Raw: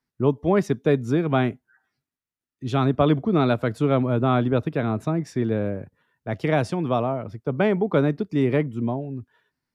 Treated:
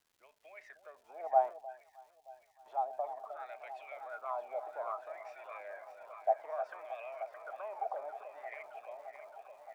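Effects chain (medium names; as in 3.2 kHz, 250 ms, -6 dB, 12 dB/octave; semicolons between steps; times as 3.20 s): in parallel at -2.5 dB: peak limiter -14.5 dBFS, peak gain reduction 8 dB; on the sum: compressor with a negative ratio -20 dBFS, ratio -1; wah-wah 0.6 Hz 770–2500 Hz, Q 12; ladder high-pass 580 Hz, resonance 75%; crackle 410 per s -67 dBFS; on a send: echo whose repeats swap between lows and highs 309 ms, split 810 Hz, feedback 85%, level -8.5 dB; 1.31–2.66 s: on the sum: three bands expanded up and down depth 100%; trim +6.5 dB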